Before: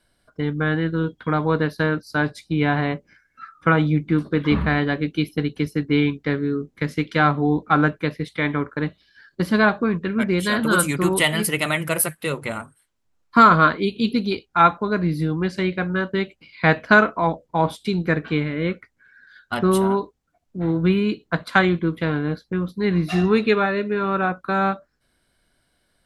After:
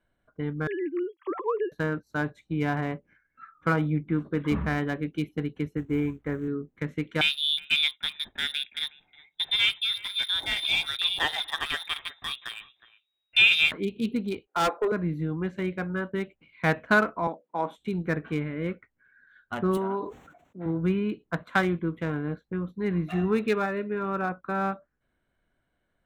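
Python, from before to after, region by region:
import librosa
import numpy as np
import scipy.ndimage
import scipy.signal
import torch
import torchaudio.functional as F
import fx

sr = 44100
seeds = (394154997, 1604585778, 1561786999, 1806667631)

y = fx.chain(x, sr, fx.sine_speech(),
    fx.fixed_phaser(hz=1000.0, stages=8), at=(0.67, 1.72))
y = fx.chain(y, sr, fx.lowpass(hz=1900.0, slope=12),
    fx.low_shelf_res(hz=110.0, db=6.5, q=1.5),
    fx.quant_companded(bits=6), at=(5.77, 6.48))
y = fx.chain(y, sr, fx.echo_single(ms=364, db=-18.0),
    fx.freq_invert(carrier_hz=3800), at=(7.21, 13.72))
y = fx.chain(y, sr, fx.highpass(hz=340.0, slope=24),
    fx.peak_eq(hz=460.0, db=13.5, octaves=1.2),
    fx.clip_hard(threshold_db=-13.5), at=(14.47, 14.92))
y = fx.chain(y, sr, fx.highpass(hz=200.0, slope=24),
    fx.low_shelf(hz=470.0, db=-4.0), at=(17.27, 17.78))
y = fx.chain(y, sr, fx.highpass(hz=320.0, slope=6),
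    fx.sustainer(db_per_s=68.0), at=(19.77, 20.66))
y = fx.wiener(y, sr, points=9)
y = fx.high_shelf(y, sr, hz=11000.0, db=5.0)
y = F.gain(torch.from_numpy(y), -7.0).numpy()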